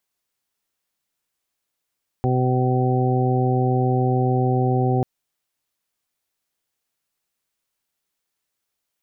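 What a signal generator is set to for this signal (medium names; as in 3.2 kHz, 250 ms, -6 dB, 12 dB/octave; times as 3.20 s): steady additive tone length 2.79 s, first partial 127 Hz, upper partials -6/-5/-10/-18/-6 dB, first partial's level -19 dB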